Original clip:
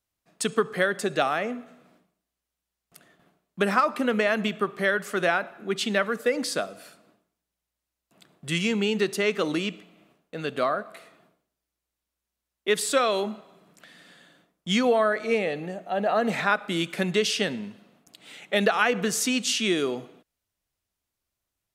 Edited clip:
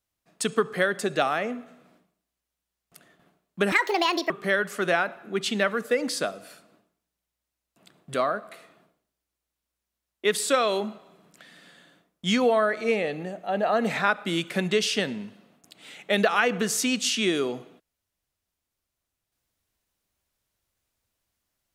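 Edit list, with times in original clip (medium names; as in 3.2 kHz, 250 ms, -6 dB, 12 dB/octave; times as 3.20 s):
3.72–4.65 s: speed 160%
8.49–10.57 s: delete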